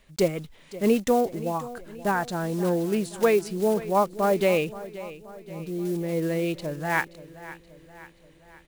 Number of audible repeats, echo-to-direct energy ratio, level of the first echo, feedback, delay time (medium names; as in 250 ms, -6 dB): 4, -15.0 dB, -16.5 dB, 53%, 527 ms